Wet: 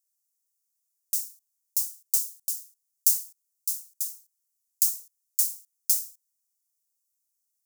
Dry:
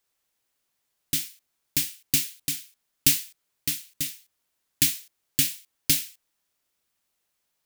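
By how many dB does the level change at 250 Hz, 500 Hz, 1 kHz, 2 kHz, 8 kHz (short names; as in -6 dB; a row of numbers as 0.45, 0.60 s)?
under -40 dB, under -40 dB, n/a, under -40 dB, -0.5 dB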